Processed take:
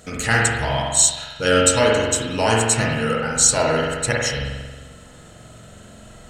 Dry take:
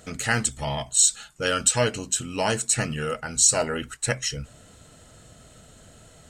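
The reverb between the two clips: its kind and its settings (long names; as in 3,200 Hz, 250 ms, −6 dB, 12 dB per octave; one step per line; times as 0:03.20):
spring reverb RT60 1.3 s, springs 44 ms, chirp 60 ms, DRR −3 dB
level +3 dB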